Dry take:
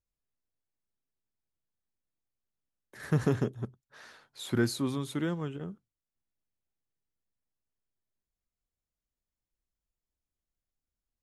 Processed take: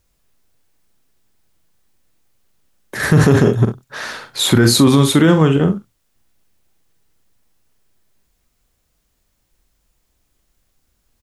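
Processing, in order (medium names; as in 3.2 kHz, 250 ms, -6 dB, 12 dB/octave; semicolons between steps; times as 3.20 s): on a send: early reflections 44 ms -9.5 dB, 69 ms -16.5 dB; on the sum: loudness maximiser +25.5 dB; trim -1 dB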